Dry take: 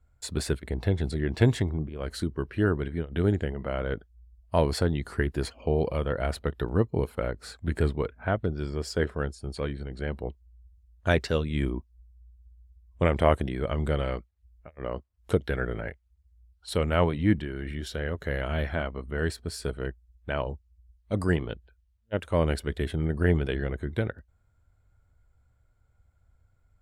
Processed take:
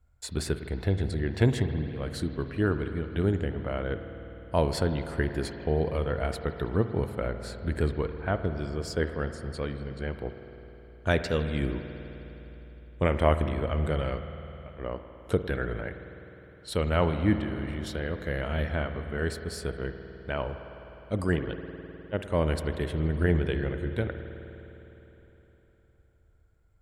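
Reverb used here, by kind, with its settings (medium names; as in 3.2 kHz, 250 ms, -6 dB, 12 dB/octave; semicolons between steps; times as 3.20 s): spring tank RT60 3.7 s, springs 51 ms, chirp 30 ms, DRR 8 dB; trim -1.5 dB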